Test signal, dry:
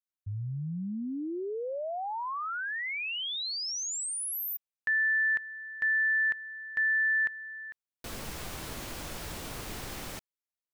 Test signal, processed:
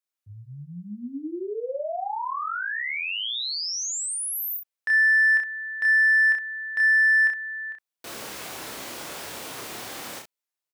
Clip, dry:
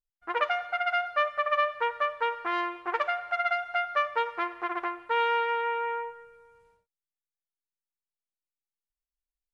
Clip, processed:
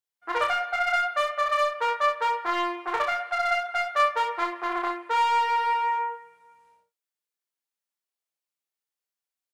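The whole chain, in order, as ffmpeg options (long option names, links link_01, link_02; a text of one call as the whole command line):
ffmpeg -i in.wav -filter_complex "[0:a]highpass=110,bass=frequency=250:gain=-10,treble=frequency=4000:gain=0,asplit=2[link_01][link_02];[link_02]aeval=exprs='0.0531*(abs(mod(val(0)/0.0531+3,4)-2)-1)':channel_layout=same,volume=-9dB[link_03];[link_01][link_03]amix=inputs=2:normalize=0,aecho=1:1:29|63:0.708|0.447" out.wav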